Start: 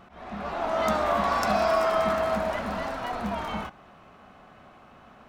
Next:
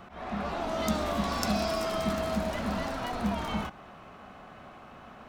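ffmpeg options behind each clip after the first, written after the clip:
ffmpeg -i in.wav -filter_complex "[0:a]acrossover=split=370|3000[link_01][link_02][link_03];[link_02]acompressor=threshold=-37dB:ratio=5[link_04];[link_01][link_04][link_03]amix=inputs=3:normalize=0,volume=3dB" out.wav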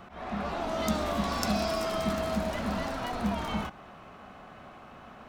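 ffmpeg -i in.wav -af anull out.wav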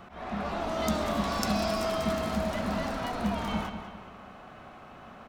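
ffmpeg -i in.wav -filter_complex "[0:a]asplit=2[link_01][link_02];[link_02]adelay=197,lowpass=frequency=4800:poles=1,volume=-9dB,asplit=2[link_03][link_04];[link_04]adelay=197,lowpass=frequency=4800:poles=1,volume=0.46,asplit=2[link_05][link_06];[link_06]adelay=197,lowpass=frequency=4800:poles=1,volume=0.46,asplit=2[link_07][link_08];[link_08]adelay=197,lowpass=frequency=4800:poles=1,volume=0.46,asplit=2[link_09][link_10];[link_10]adelay=197,lowpass=frequency=4800:poles=1,volume=0.46[link_11];[link_01][link_03][link_05][link_07][link_09][link_11]amix=inputs=6:normalize=0" out.wav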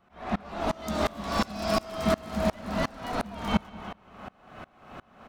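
ffmpeg -i in.wav -af "aeval=exprs='val(0)*pow(10,-27*if(lt(mod(-2.8*n/s,1),2*abs(-2.8)/1000),1-mod(-2.8*n/s,1)/(2*abs(-2.8)/1000),(mod(-2.8*n/s,1)-2*abs(-2.8)/1000)/(1-2*abs(-2.8)/1000))/20)':channel_layout=same,volume=8.5dB" out.wav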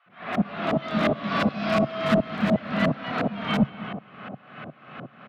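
ffmpeg -i in.wav -filter_complex "[0:a]highpass=frequency=120:width=0.5412,highpass=frequency=120:width=1.3066,equalizer=frequency=140:width_type=q:width=4:gain=6,equalizer=frequency=370:width_type=q:width=4:gain=-4,equalizer=frequency=910:width_type=q:width=4:gain=-8,lowpass=frequency=3300:width=0.5412,lowpass=frequency=3300:width=1.3066,asoftclip=type=hard:threshold=-21.5dB,acrossover=split=820[link_01][link_02];[link_01]adelay=60[link_03];[link_03][link_02]amix=inputs=2:normalize=0,volume=8dB" out.wav

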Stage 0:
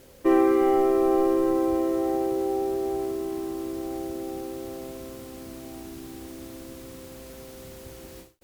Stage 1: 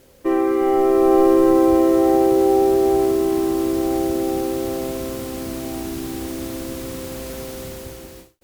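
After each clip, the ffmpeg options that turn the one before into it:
ffmpeg -i in.wav -af "dynaudnorm=framelen=190:gausssize=9:maxgain=12dB" out.wav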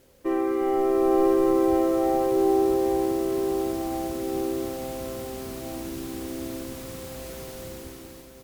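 ffmpeg -i in.wav -af "aecho=1:1:974:0.316,volume=-6.5dB" out.wav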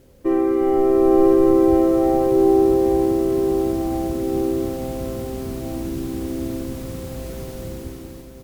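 ffmpeg -i in.wav -af "lowshelf=frequency=420:gain=11.5" out.wav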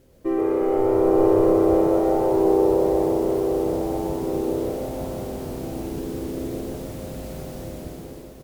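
ffmpeg -i in.wav -filter_complex "[0:a]asplit=7[link_01][link_02][link_03][link_04][link_05][link_06][link_07];[link_02]adelay=124,afreqshift=94,volume=-4.5dB[link_08];[link_03]adelay=248,afreqshift=188,volume=-11.2dB[link_09];[link_04]adelay=372,afreqshift=282,volume=-18dB[link_10];[link_05]adelay=496,afreqshift=376,volume=-24.7dB[link_11];[link_06]adelay=620,afreqshift=470,volume=-31.5dB[link_12];[link_07]adelay=744,afreqshift=564,volume=-38.2dB[link_13];[link_01][link_08][link_09][link_10][link_11][link_12][link_13]amix=inputs=7:normalize=0,volume=-4.5dB" out.wav

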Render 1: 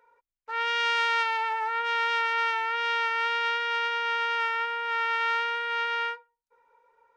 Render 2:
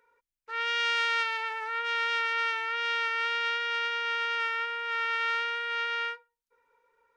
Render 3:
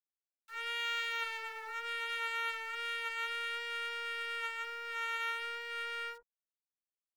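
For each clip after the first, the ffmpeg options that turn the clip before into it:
ffmpeg -i in.wav -af "equalizer=frequency=750:width_type=o:width=0.79:gain=-13.5" out.wav
ffmpeg -i in.wav -filter_complex "[0:a]aeval=exprs='val(0)*gte(abs(val(0)),0.00447)':channel_layout=same,acrossover=split=1100[link_01][link_02];[link_01]adelay=50[link_03];[link_03][link_02]amix=inputs=2:normalize=0,aeval=exprs='0.141*(cos(1*acos(clip(val(0)/0.141,-1,1)))-cos(1*PI/2))+0.0158*(cos(2*acos(clip(val(0)/0.141,-1,1)))-cos(2*PI/2))+0.00708*(cos(3*acos(clip(val(0)/0.141,-1,1)))-cos(3*PI/2))+0.00562*(cos(8*acos(clip(val(0)/0.141,-1,1)))-cos(8*PI/2))':channel_layout=same,volume=-7dB" out.wav

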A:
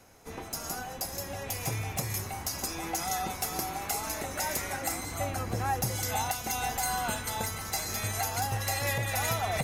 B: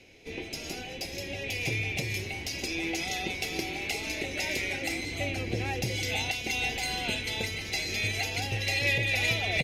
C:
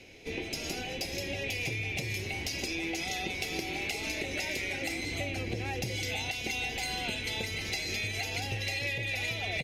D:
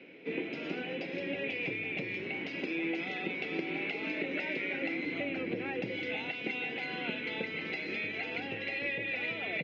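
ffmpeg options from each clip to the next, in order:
ffmpeg -i in.wav -af "firequalizer=gain_entry='entry(220,0);entry(340,7);entry(810,-8);entry(1200,-16);entry(2300,13);entry(7500,-8);entry(14000,-15)':delay=0.05:min_phase=1" out.wav
ffmpeg -i in.wav -af "acompressor=threshold=-34dB:ratio=6,volume=3dB" out.wav
ffmpeg -i in.wav -af "highpass=frequency=170:width=0.5412,highpass=frequency=170:width=1.3066,equalizer=frequency=170:width_type=q:width=4:gain=4,equalizer=frequency=290:width_type=q:width=4:gain=5,equalizer=frequency=490:width_type=q:width=4:gain=3,equalizer=frequency=760:width_type=q:width=4:gain=-6,equalizer=frequency=1400:width_type=q:width=4:gain=4,lowpass=frequency=2800:width=0.5412,lowpass=frequency=2800:width=1.3066" out.wav

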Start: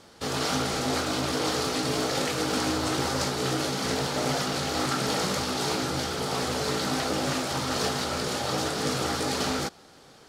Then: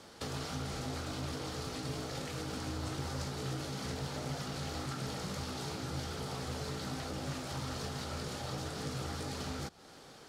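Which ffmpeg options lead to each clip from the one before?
ffmpeg -i in.wav -filter_complex "[0:a]acrossover=split=140[link_01][link_02];[link_02]acompressor=threshold=-38dB:ratio=8[link_03];[link_01][link_03]amix=inputs=2:normalize=0,volume=-1.5dB" out.wav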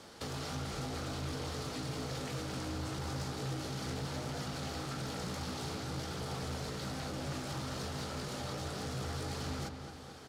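ffmpeg -i in.wav -filter_complex "[0:a]asoftclip=type=tanh:threshold=-34dB,asplit=2[link_01][link_02];[link_02]adelay=218,lowpass=frequency=3800:poles=1,volume=-7.5dB,asplit=2[link_03][link_04];[link_04]adelay=218,lowpass=frequency=3800:poles=1,volume=0.53,asplit=2[link_05][link_06];[link_06]adelay=218,lowpass=frequency=3800:poles=1,volume=0.53,asplit=2[link_07][link_08];[link_08]adelay=218,lowpass=frequency=3800:poles=1,volume=0.53,asplit=2[link_09][link_10];[link_10]adelay=218,lowpass=frequency=3800:poles=1,volume=0.53,asplit=2[link_11][link_12];[link_12]adelay=218,lowpass=frequency=3800:poles=1,volume=0.53[link_13];[link_01][link_03][link_05][link_07][link_09][link_11][link_13]amix=inputs=7:normalize=0,volume=1dB" out.wav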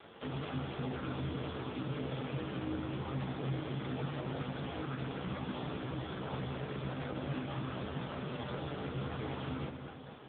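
ffmpeg -i in.wav -filter_complex "[0:a]acrossover=split=320[link_01][link_02];[link_01]acrusher=bits=4:mode=log:mix=0:aa=0.000001[link_03];[link_03][link_02]amix=inputs=2:normalize=0,volume=4.5dB" -ar 8000 -c:a libopencore_amrnb -b:a 5150 out.amr

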